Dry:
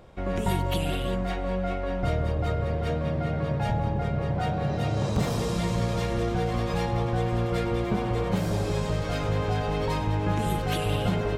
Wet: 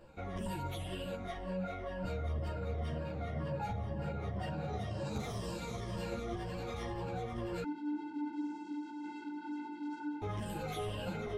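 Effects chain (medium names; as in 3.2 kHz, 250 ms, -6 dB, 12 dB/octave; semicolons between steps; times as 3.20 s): drifting ripple filter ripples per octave 1.3, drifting -2 Hz, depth 11 dB; peak limiter -23.5 dBFS, peak gain reduction 10 dB; 7.63–10.22 s: vocoder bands 8, square 296 Hz; three-phase chorus; trim -4.5 dB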